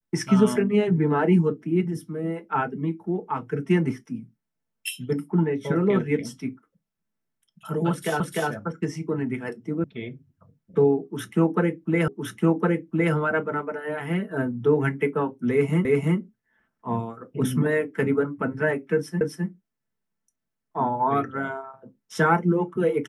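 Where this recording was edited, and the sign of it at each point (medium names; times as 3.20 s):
8.20 s: repeat of the last 0.3 s
9.84 s: sound stops dead
12.08 s: repeat of the last 1.06 s
15.85 s: repeat of the last 0.34 s
19.21 s: repeat of the last 0.26 s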